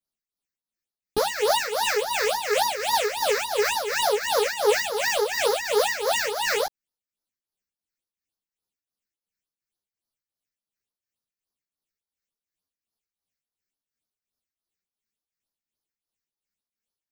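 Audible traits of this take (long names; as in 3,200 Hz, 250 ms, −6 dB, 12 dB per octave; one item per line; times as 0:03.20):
phaser sweep stages 6, 3.5 Hz, lowest notch 800–2,600 Hz
tremolo triangle 2.8 Hz, depth 70%
a shimmering, thickened sound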